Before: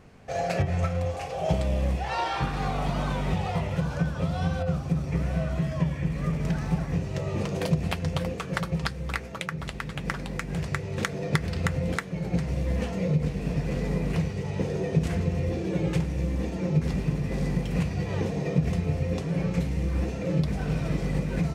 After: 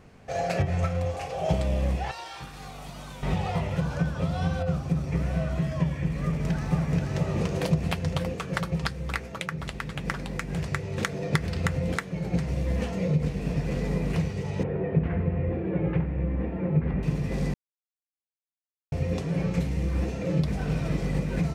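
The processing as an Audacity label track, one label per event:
2.110000	3.230000	first-order pre-emphasis coefficient 0.8
6.230000	7.180000	delay throw 480 ms, feedback 35%, level −3.5 dB
14.630000	17.030000	low-pass filter 2,200 Hz 24 dB per octave
17.540000	18.920000	silence

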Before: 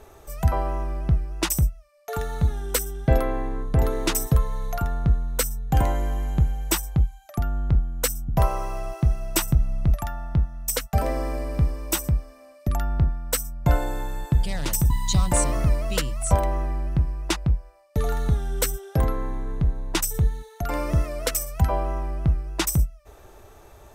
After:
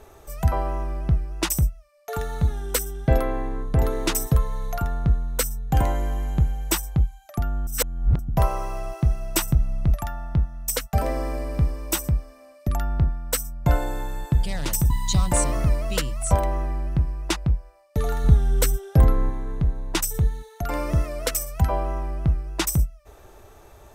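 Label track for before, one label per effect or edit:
7.670000	8.190000	reverse
18.240000	19.300000	low-shelf EQ 240 Hz +7.5 dB

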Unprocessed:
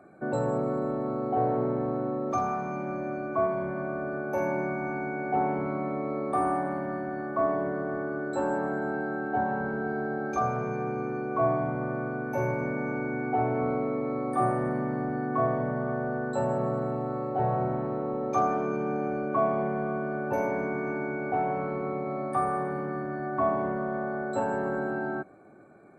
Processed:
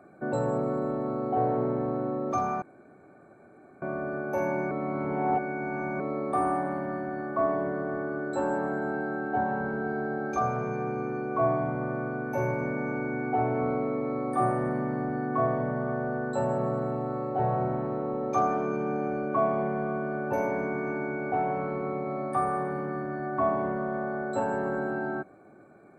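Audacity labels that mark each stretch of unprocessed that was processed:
2.620000	3.820000	fill with room tone
4.710000	6.000000	reverse

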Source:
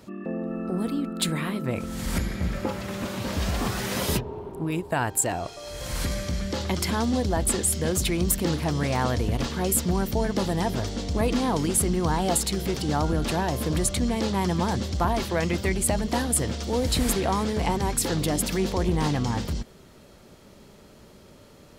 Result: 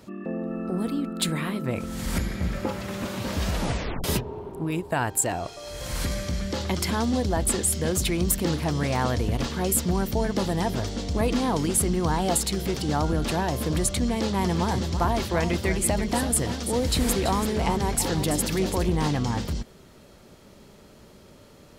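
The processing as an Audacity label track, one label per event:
3.510000	3.510000	tape stop 0.53 s
14.050000	18.860000	single-tap delay 334 ms −9.5 dB

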